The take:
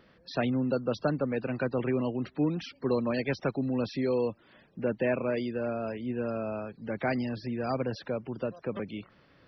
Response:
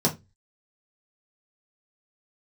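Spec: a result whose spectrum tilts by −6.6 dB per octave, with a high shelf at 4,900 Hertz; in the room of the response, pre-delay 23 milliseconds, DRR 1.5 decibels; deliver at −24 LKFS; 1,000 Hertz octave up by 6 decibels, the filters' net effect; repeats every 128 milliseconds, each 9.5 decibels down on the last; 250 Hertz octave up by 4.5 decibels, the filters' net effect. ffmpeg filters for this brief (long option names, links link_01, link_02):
-filter_complex "[0:a]equalizer=frequency=250:width_type=o:gain=4.5,equalizer=frequency=1000:width_type=o:gain=8,highshelf=frequency=4900:gain=3.5,aecho=1:1:128|256|384|512:0.335|0.111|0.0365|0.012,asplit=2[link_01][link_02];[1:a]atrim=start_sample=2205,adelay=23[link_03];[link_02][link_03]afir=irnorm=-1:irlink=0,volume=-13.5dB[link_04];[link_01][link_04]amix=inputs=2:normalize=0,volume=-3.5dB"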